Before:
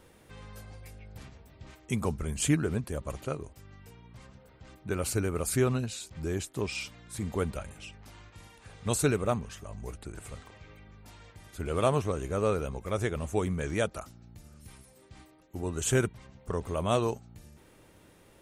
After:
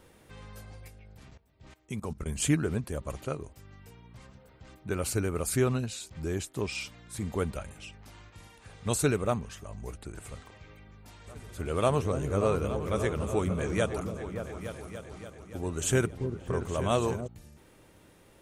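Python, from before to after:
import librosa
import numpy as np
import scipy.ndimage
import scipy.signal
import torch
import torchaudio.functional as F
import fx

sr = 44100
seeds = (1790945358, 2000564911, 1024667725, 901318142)

y = fx.level_steps(x, sr, step_db=17, at=(0.88, 2.26))
y = fx.echo_opening(y, sr, ms=288, hz=400, octaves=2, feedback_pct=70, wet_db=-6, at=(11.26, 17.26), fade=0.02)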